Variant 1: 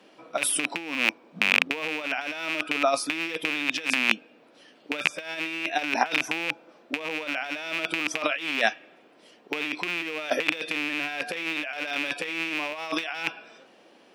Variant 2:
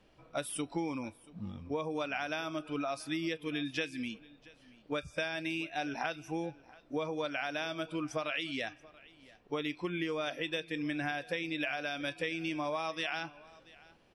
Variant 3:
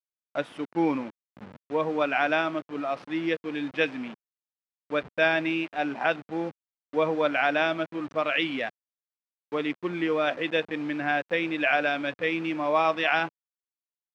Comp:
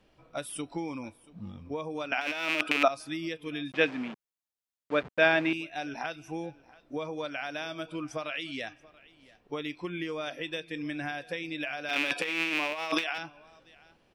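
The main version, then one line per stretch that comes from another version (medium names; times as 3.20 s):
2
2.12–2.88 s: from 1
3.72–5.53 s: from 3
11.89–13.18 s: from 1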